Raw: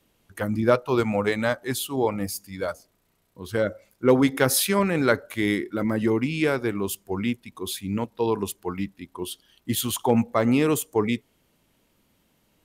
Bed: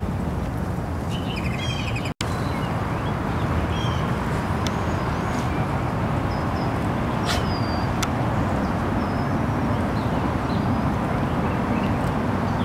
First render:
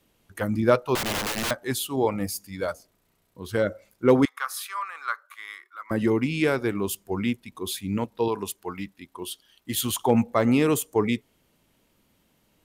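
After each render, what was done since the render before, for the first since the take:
0:00.95–0:01.51: wrap-around overflow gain 23 dB
0:04.25–0:05.91: four-pole ladder high-pass 1,100 Hz, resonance 80%
0:08.28–0:09.75: low-shelf EQ 460 Hz −7 dB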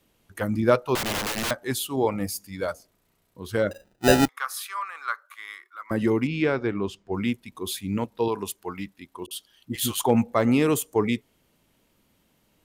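0:03.71–0:04.29: sample-rate reduction 1,100 Hz
0:06.27–0:07.14: high-frequency loss of the air 150 metres
0:09.26–0:10.04: all-pass dispersion highs, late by 49 ms, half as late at 540 Hz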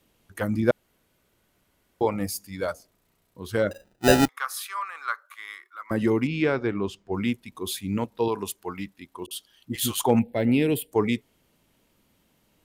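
0:00.71–0:02.01: fill with room tone
0:10.19–0:10.92: phaser with its sweep stopped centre 2,800 Hz, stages 4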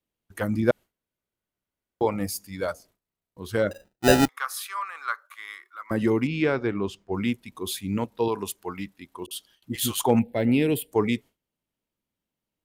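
noise gate with hold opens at −44 dBFS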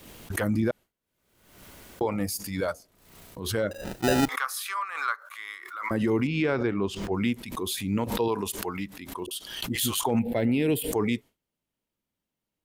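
brickwall limiter −16.5 dBFS, peak gain reduction 9 dB
background raised ahead of every attack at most 62 dB per second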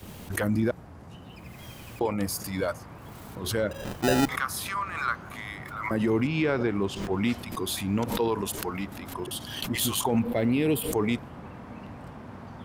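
mix in bed −19.5 dB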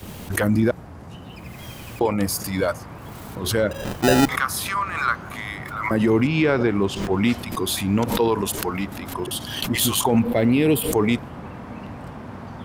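level +6.5 dB

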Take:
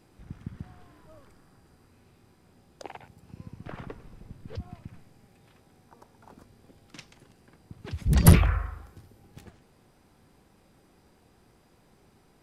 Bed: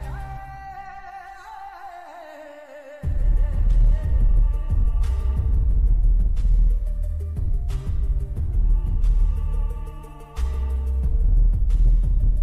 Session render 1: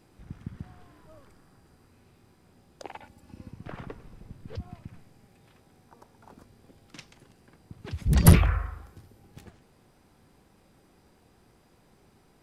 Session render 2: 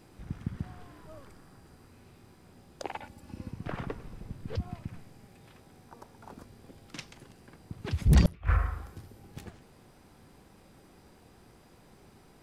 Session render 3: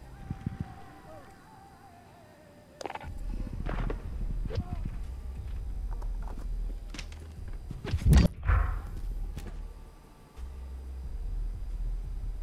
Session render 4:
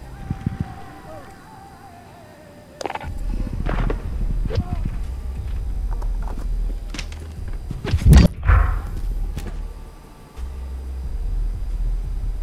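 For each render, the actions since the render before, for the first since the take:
0:02.93–0:03.51: comb filter 3.5 ms
gate with flip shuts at −11 dBFS, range −38 dB; in parallel at −5 dB: gain into a clipping stage and back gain 24.5 dB
mix in bed −17.5 dB
level +11 dB; brickwall limiter −1 dBFS, peak gain reduction 1.5 dB

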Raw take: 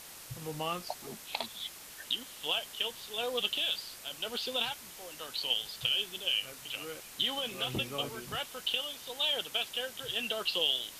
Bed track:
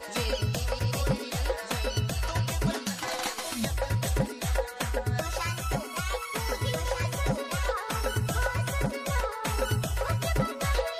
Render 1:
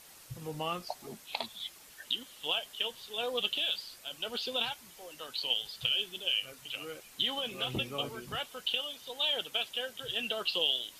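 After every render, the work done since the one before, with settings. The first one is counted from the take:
broadband denoise 7 dB, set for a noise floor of −49 dBFS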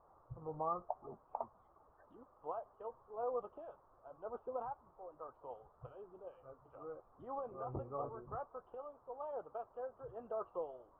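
Chebyshev low-pass filter 1,200 Hz, order 5
parametric band 210 Hz −12.5 dB 1.3 octaves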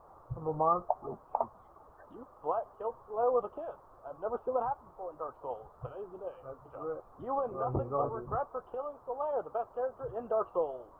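level +10.5 dB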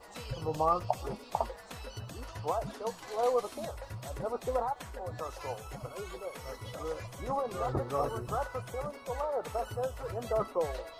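mix in bed track −14.5 dB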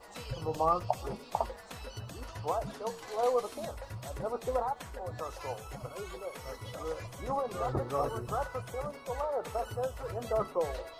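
hum removal 76.52 Hz, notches 6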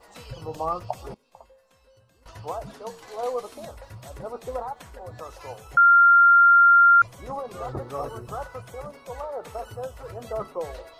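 0:01.14–0:02.26: tuned comb filter 530 Hz, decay 0.52 s, mix 90%
0:05.77–0:07.02: beep over 1,390 Hz −11 dBFS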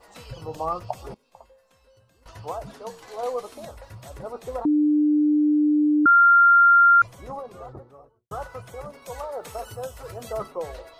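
0:04.65–0:06.06: beep over 299 Hz −16 dBFS
0:06.98–0:08.31: fade out and dull
0:09.02–0:10.48: high-shelf EQ 3,600 Hz +8.5 dB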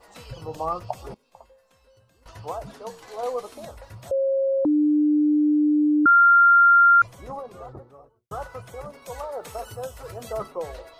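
0:04.11–0:04.65: beep over 541 Hz −19 dBFS

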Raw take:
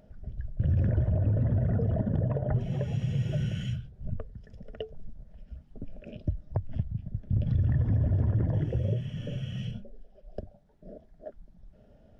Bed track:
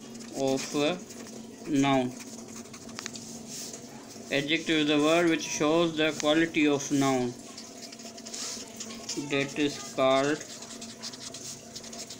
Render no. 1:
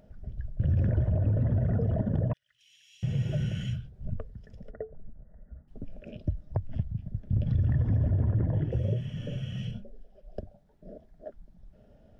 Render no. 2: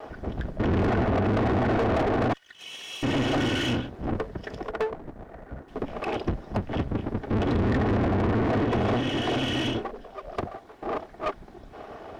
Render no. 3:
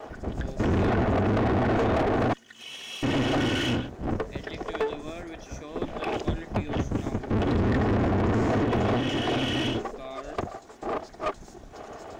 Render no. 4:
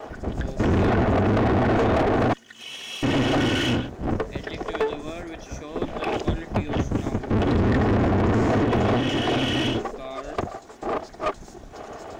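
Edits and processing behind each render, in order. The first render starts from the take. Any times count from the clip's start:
0:02.33–0:03.03: inverse Chebyshev high-pass filter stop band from 870 Hz, stop band 60 dB; 0:04.71–0:05.68: Chebyshev low-pass with heavy ripple 2,000 Hz, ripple 3 dB; 0:08.11–0:08.72: high-frequency loss of the air 180 metres
lower of the sound and its delayed copy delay 2.7 ms; mid-hump overdrive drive 33 dB, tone 2,400 Hz, clips at −16.5 dBFS
mix in bed track −16.5 dB
level +3.5 dB

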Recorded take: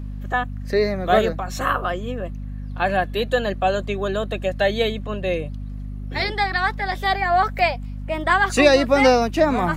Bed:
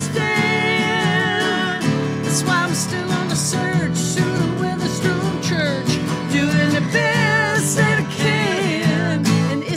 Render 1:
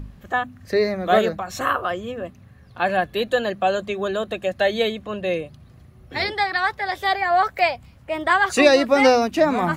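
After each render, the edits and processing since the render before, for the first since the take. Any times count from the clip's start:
hum removal 50 Hz, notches 5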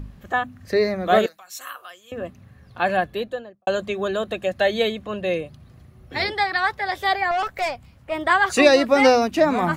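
0:01.26–0:02.12: first difference
0:02.92–0:03.67: fade out and dull
0:07.31–0:08.12: tube saturation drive 19 dB, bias 0.45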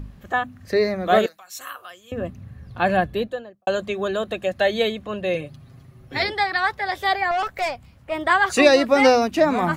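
0:01.55–0:03.27: low-shelf EQ 230 Hz +10.5 dB
0:05.34–0:06.23: comb filter 7.4 ms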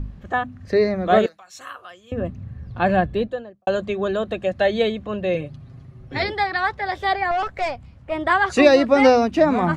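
low-pass filter 7,900 Hz 12 dB per octave
spectral tilt −1.5 dB per octave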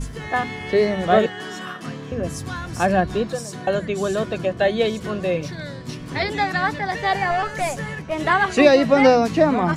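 mix in bed −14 dB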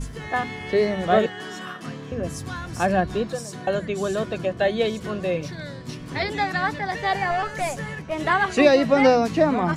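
level −2.5 dB

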